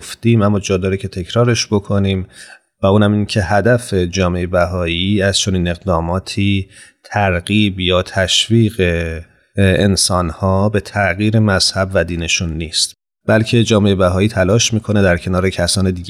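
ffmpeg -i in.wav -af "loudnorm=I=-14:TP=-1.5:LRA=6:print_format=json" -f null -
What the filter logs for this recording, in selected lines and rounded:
"input_i" : "-14.7",
"input_tp" : "-1.6",
"input_lra" : "2.2",
"input_thresh" : "-24.9",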